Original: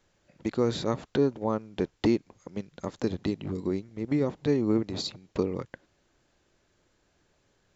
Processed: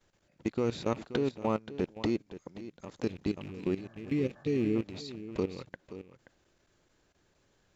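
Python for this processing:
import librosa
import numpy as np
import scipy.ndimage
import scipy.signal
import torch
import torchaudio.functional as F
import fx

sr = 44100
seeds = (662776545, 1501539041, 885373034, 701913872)

y = fx.rattle_buzz(x, sr, strikes_db=-38.0, level_db=-34.0)
y = fx.spec_repair(y, sr, seeds[0], start_s=3.8, length_s=0.93, low_hz=520.0, high_hz=1800.0, source='before')
y = y + 10.0 ** (-11.0 / 20.0) * np.pad(y, (int(528 * sr / 1000.0), 0))[:len(y)]
y = fx.level_steps(y, sr, step_db=14)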